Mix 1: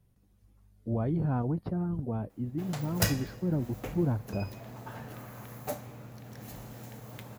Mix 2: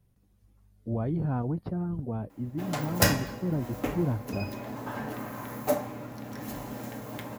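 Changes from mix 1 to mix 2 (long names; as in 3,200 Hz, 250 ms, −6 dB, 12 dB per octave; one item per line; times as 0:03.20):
background +4.0 dB
reverb: on, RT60 0.45 s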